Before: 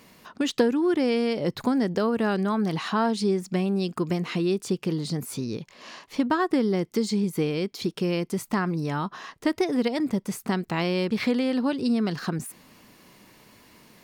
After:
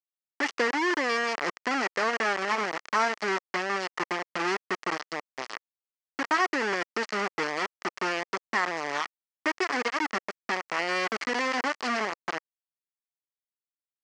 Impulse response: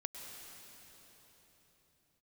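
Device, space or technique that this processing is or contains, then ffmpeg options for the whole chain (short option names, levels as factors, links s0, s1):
hand-held game console: -af "acrusher=bits=3:mix=0:aa=0.000001,highpass=440,equalizer=f=520:t=q:w=4:g=-3,equalizer=f=1200:t=q:w=4:g=5,equalizer=f=1900:t=q:w=4:g=8,equalizer=f=3700:t=q:w=4:g=-9,lowpass=f=5700:w=0.5412,lowpass=f=5700:w=1.3066,volume=0.75"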